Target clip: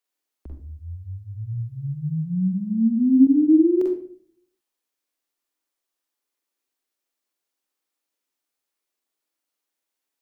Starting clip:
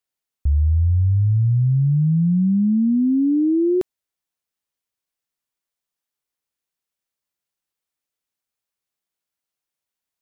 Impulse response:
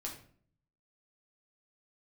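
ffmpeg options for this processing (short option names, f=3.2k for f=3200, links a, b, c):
-filter_complex "[0:a]lowshelf=f=200:t=q:w=1.5:g=-12,acrossover=split=150|310[a][b][c];[a]acompressor=threshold=-41dB:ratio=4[d];[b]acompressor=threshold=-29dB:ratio=4[e];[c]acompressor=threshold=-25dB:ratio=4[f];[d][e][f]amix=inputs=3:normalize=0,asettb=1/sr,asplit=3[g][h][i];[g]atrim=end=1.494[j];[h]atrim=start=1.49:end=3.27,asetpts=PTS-STARTPTS,afade=t=in:d=0.004:c=qsin,afade=t=out:st=1.776:d=0.004:c=qsin,asplit=2[k][l];[l]adelay=27,volume=-3dB[m];[k][m]amix=inputs=2:normalize=0,atrim=end_sample=78498[n];[i]atrim=start=3.266[o];[j][n]acrossfade=d=0.004:c1=hsin:c2=qsin[p];[p][o]acrossfade=d=0.004:c1=qsin:c2=hsin,asplit=2[q][r];[1:a]atrim=start_sample=2205,adelay=44[s];[r][s]afir=irnorm=-1:irlink=0,volume=0.5dB[t];[q][t]amix=inputs=2:normalize=0"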